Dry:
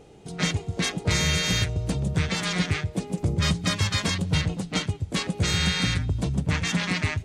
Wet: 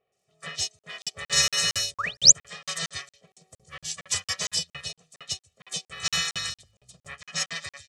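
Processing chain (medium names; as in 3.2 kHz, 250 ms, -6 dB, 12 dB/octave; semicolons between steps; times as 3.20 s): painted sound rise, 1.80–2.02 s, 880–8400 Hz -25 dBFS; comb 1.5 ms, depth 99%; crackle 82 per s -45 dBFS; low-pass 11 kHz 12 dB/octave; RIAA curve recording; de-hum 262 Hz, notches 10; speed mistake 48 kHz file played as 44.1 kHz; bass shelf 140 Hz -6 dB; bands offset in time lows, highs 120 ms, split 3 kHz; crackling interface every 0.23 s, samples 2048, zero, from 0.79 s; upward expansion 2.5:1, over -32 dBFS; trim +4.5 dB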